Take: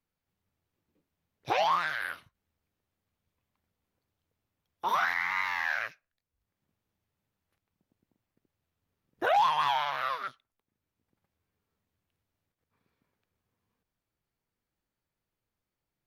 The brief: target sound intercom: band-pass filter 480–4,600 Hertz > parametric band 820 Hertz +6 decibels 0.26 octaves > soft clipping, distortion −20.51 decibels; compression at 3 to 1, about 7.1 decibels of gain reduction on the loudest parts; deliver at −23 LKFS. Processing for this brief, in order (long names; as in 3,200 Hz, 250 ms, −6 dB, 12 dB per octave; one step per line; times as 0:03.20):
downward compressor 3 to 1, threshold −31 dBFS
band-pass filter 480–4,600 Hz
parametric band 820 Hz +6 dB 0.26 octaves
soft clipping −22.5 dBFS
level +11 dB